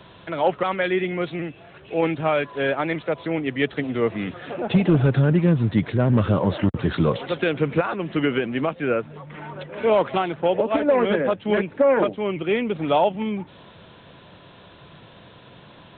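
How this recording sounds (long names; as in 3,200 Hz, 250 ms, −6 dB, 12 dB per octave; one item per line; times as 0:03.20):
background noise floor −48 dBFS
spectral slope −6.0 dB per octave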